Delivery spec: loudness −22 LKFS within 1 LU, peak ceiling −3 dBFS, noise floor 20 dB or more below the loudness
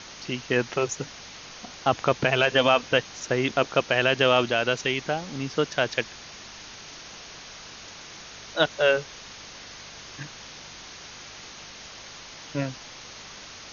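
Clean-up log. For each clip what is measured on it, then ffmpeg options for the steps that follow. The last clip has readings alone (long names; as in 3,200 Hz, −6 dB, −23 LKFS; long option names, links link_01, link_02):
mains hum 50 Hz; hum harmonics up to 200 Hz; level of the hum −58 dBFS; background noise floor −44 dBFS; target noise floor −45 dBFS; integrated loudness −24.5 LKFS; sample peak −6.0 dBFS; target loudness −22.0 LKFS
→ -af "bandreject=frequency=50:width_type=h:width=4,bandreject=frequency=100:width_type=h:width=4,bandreject=frequency=150:width_type=h:width=4,bandreject=frequency=200:width_type=h:width=4"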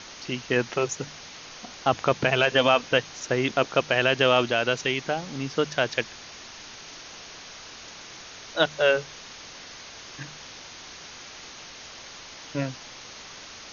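mains hum none found; background noise floor −44 dBFS; target noise floor −45 dBFS
→ -af "afftdn=noise_reduction=6:noise_floor=-44"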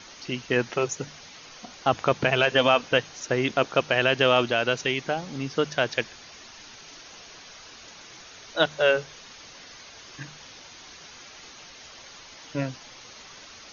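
background noise floor −47 dBFS; integrated loudness −24.5 LKFS; sample peak −6.0 dBFS; target loudness −22.0 LKFS
→ -af "volume=2.5dB"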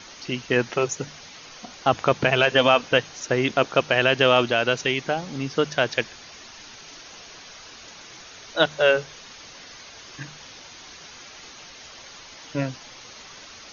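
integrated loudness −22.0 LKFS; sample peak −3.5 dBFS; background noise floor −44 dBFS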